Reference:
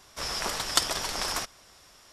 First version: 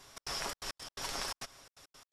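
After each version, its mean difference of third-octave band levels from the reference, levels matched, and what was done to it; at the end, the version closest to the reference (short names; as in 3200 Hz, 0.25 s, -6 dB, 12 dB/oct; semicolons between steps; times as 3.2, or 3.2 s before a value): 7.5 dB: comb 7.3 ms, depth 35%; compressor 12:1, threshold -32 dBFS, peak gain reduction 16 dB; step gate "xx.xxx.x.x.xx" 170 bpm -60 dB; downsampling 32000 Hz; gain -2 dB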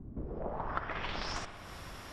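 14.5 dB: tone controls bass +8 dB, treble -14 dB; compressor 8:1, threshold -46 dBFS, peak gain reduction 23.5 dB; low-pass sweep 250 Hz -> 12000 Hz, 0.12–1.6; spring tank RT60 1.9 s, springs 58 ms, chirp 75 ms, DRR 8 dB; gain +9.5 dB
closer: first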